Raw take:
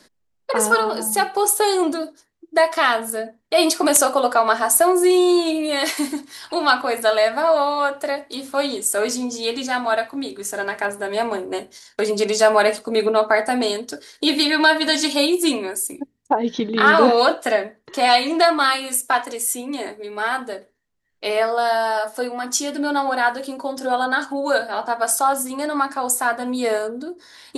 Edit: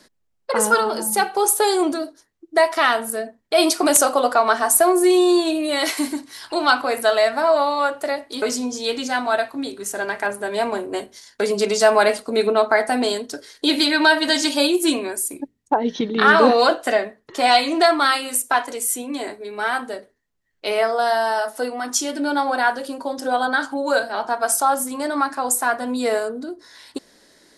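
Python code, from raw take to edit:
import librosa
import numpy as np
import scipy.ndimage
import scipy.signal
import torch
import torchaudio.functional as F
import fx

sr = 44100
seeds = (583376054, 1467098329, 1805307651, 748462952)

y = fx.edit(x, sr, fx.cut(start_s=8.42, length_s=0.59), tone=tone)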